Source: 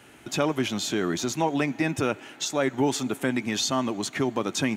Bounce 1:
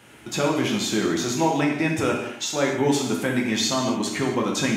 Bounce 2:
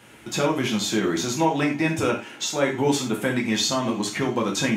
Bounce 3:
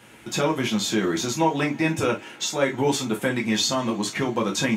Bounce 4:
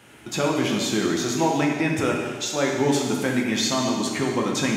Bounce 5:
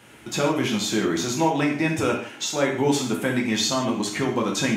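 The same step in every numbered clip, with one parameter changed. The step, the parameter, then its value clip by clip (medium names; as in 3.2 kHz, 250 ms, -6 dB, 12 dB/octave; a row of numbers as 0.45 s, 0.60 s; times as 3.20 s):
gated-style reverb, gate: 300 ms, 130 ms, 80 ms, 490 ms, 190 ms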